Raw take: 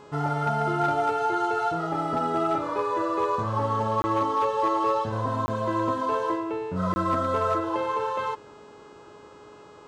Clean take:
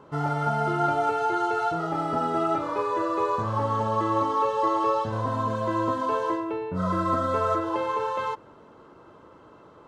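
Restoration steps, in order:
clipped peaks rebuilt −17 dBFS
hum removal 417 Hz, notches 20
repair the gap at 0:04.02/0:05.46/0:06.94, 20 ms

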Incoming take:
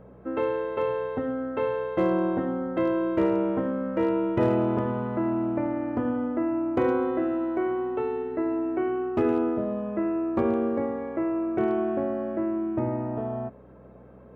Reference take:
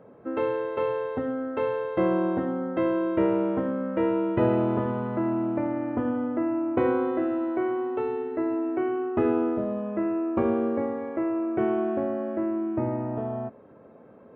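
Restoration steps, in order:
clipped peaks rebuilt −15.5 dBFS
hum removal 62.6 Hz, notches 3

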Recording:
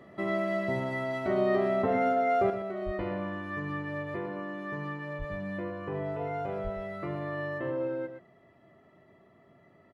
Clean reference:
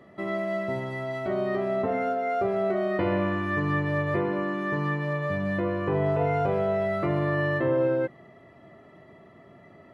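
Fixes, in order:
high-pass at the plosives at 0:02.85/0:05.18/0:06.63
echo removal 119 ms −9.5 dB
level correction +9 dB, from 0:02.50

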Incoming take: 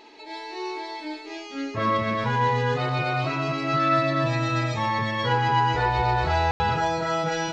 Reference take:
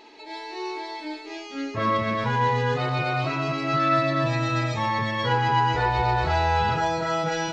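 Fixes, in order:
ambience match 0:06.51–0:06.60

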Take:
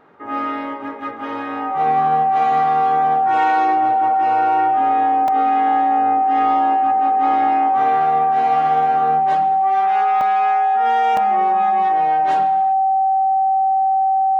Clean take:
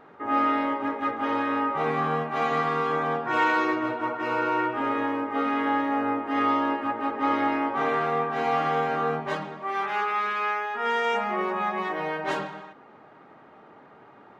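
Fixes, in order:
notch filter 770 Hz, Q 30
repair the gap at 0:05.28/0:10.21/0:11.17, 2.6 ms

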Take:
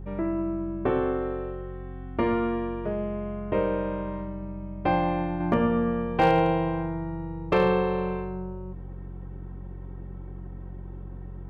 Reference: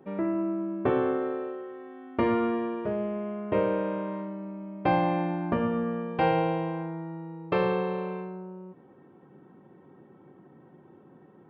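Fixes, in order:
clipped peaks rebuilt −13 dBFS
hum removal 45.4 Hz, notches 4
level 0 dB, from 0:05.40 −4 dB

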